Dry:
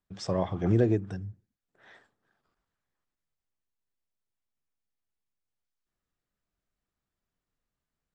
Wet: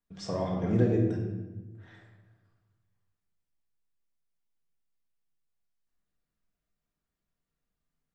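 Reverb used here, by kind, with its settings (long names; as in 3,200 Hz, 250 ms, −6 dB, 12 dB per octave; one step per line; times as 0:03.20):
rectangular room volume 670 cubic metres, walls mixed, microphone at 1.7 metres
level −5 dB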